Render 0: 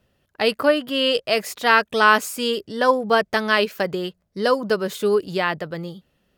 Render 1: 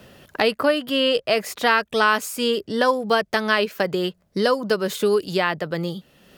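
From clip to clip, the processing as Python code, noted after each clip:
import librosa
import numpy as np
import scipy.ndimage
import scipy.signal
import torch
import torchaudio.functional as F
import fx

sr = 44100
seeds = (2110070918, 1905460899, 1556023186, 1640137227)

y = fx.band_squash(x, sr, depth_pct=70)
y = y * 10.0 ** (-1.0 / 20.0)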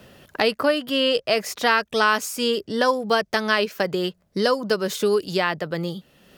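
y = fx.dynamic_eq(x, sr, hz=5700.0, q=2.4, threshold_db=-44.0, ratio=4.0, max_db=6)
y = y * 10.0 ** (-1.0 / 20.0)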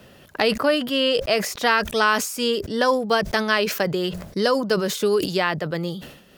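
y = fx.sustainer(x, sr, db_per_s=78.0)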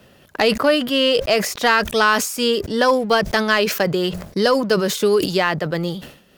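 y = fx.leveller(x, sr, passes=1)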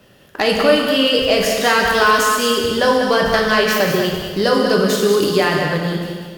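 y = x + 10.0 ** (-7.5 / 20.0) * np.pad(x, (int(193 * sr / 1000.0), 0))[:len(x)]
y = fx.rev_plate(y, sr, seeds[0], rt60_s=1.6, hf_ratio=1.0, predelay_ms=0, drr_db=0.5)
y = y * 10.0 ** (-1.0 / 20.0)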